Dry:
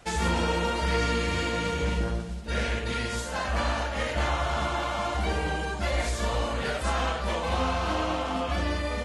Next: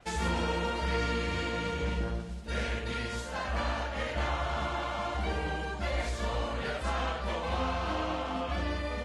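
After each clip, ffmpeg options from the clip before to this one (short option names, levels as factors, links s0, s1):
-af "adynamicequalizer=threshold=0.00282:dfrequency=5800:dqfactor=0.7:tfrequency=5800:tqfactor=0.7:attack=5:release=100:ratio=0.375:range=3.5:mode=cutabove:tftype=highshelf,volume=0.596"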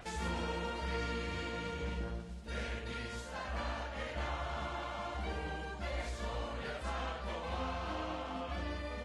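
-af "acompressor=mode=upward:threshold=0.0178:ratio=2.5,volume=0.447"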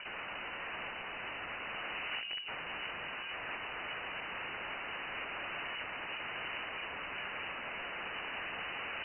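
-af "aeval=exprs='(mod(89.1*val(0)+1,2)-1)/89.1':c=same,lowpass=f=2600:t=q:w=0.5098,lowpass=f=2600:t=q:w=0.6013,lowpass=f=2600:t=q:w=0.9,lowpass=f=2600:t=q:w=2.563,afreqshift=-3000,volume=1.88"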